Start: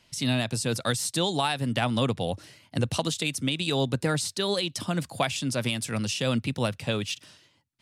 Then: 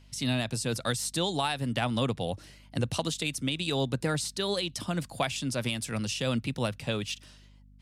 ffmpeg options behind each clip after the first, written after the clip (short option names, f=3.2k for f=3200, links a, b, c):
-af "aeval=exprs='val(0)+0.00282*(sin(2*PI*50*n/s)+sin(2*PI*2*50*n/s)/2+sin(2*PI*3*50*n/s)/3+sin(2*PI*4*50*n/s)/4+sin(2*PI*5*50*n/s)/5)':c=same,volume=-3dB"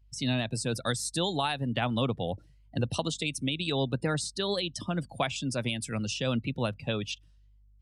-af "afftdn=nr=23:nf=-41"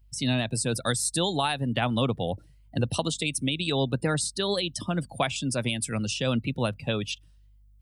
-af "aexciter=amount=2.6:drive=1.1:freq=8.4k,volume=3dB"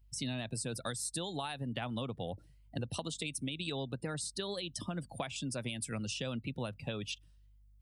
-af "acompressor=threshold=-29dB:ratio=6,volume=-5.5dB"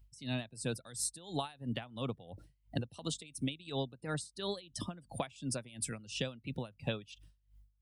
-af "aeval=exprs='val(0)*pow(10,-20*(0.5-0.5*cos(2*PI*2.9*n/s))/20)':c=same,volume=4dB"